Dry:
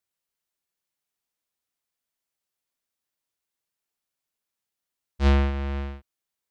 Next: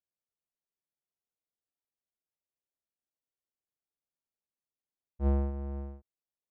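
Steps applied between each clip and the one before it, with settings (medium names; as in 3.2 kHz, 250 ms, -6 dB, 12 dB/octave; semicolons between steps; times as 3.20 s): Chebyshev low-pass 630 Hz, order 2; trim -7 dB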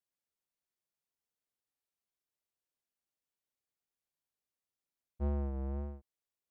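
compression, threshold -32 dBFS, peak gain reduction 7.5 dB; wow and flutter 63 cents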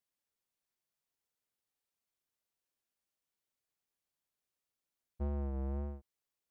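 compression, threshold -36 dBFS, peak gain reduction 5 dB; trim +1.5 dB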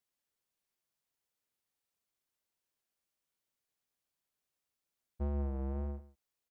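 delay 140 ms -15.5 dB; trim +1 dB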